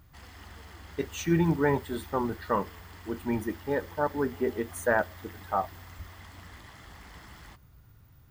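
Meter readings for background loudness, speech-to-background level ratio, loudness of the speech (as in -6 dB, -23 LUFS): -49.0 LUFS, 19.0 dB, -30.0 LUFS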